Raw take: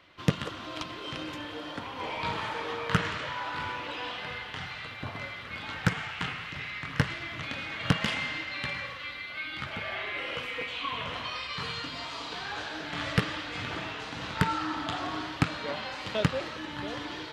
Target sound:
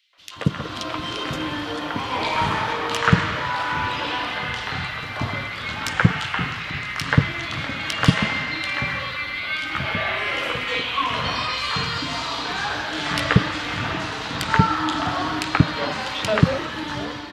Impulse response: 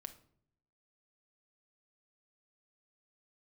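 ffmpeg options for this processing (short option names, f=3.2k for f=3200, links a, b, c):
-filter_complex "[0:a]acrossover=split=490|2700[a][b][c];[b]adelay=130[d];[a]adelay=180[e];[e][d][c]amix=inputs=3:normalize=0,dynaudnorm=f=130:g=9:m=11.5dB,volume=1dB"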